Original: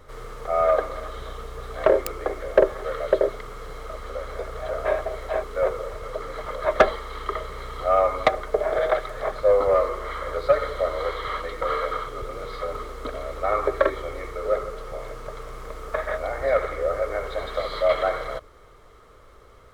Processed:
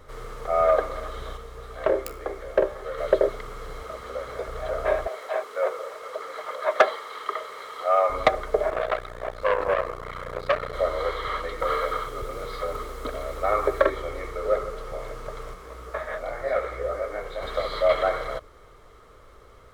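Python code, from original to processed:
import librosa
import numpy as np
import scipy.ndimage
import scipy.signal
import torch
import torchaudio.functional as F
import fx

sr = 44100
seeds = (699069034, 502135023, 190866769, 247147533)

y = fx.comb_fb(x, sr, f0_hz=66.0, decay_s=0.32, harmonics='all', damping=0.0, mix_pct=60, at=(1.36, 2.97), fade=0.02)
y = fx.highpass(y, sr, hz=77.0, slope=12, at=(3.82, 4.48))
y = fx.highpass(y, sr, hz=510.0, slope=12, at=(5.07, 8.1))
y = fx.transformer_sat(y, sr, knee_hz=1400.0, at=(8.7, 10.74))
y = fx.high_shelf(y, sr, hz=9300.0, db=8.5, at=(11.6, 13.83))
y = fx.detune_double(y, sr, cents=35, at=(15.53, 17.41), fade=0.02)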